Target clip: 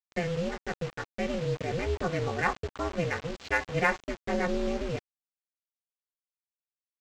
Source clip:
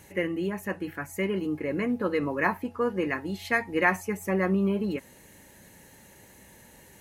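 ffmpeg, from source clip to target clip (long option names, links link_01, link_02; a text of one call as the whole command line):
ffmpeg -i in.wav -af "aecho=1:1:3.1:0.46,aresample=16000,acrusher=bits=5:mix=0:aa=0.000001,aresample=44100,aeval=exprs='val(0)*sin(2*PI*170*n/s)':channel_layout=same,adynamicsmooth=sensitivity=4:basefreq=4400" out.wav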